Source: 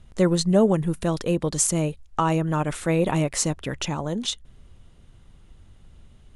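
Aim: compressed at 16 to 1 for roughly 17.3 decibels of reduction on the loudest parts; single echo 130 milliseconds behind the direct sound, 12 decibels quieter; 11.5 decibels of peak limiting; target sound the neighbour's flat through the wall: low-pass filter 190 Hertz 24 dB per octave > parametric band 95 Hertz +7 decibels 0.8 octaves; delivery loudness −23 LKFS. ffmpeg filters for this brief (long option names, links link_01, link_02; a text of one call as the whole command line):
ffmpeg -i in.wav -af "acompressor=threshold=-30dB:ratio=16,alimiter=level_in=2.5dB:limit=-24dB:level=0:latency=1,volume=-2.5dB,lowpass=frequency=190:width=0.5412,lowpass=frequency=190:width=1.3066,equalizer=frequency=95:width_type=o:width=0.8:gain=7,aecho=1:1:130:0.251,volume=18.5dB" out.wav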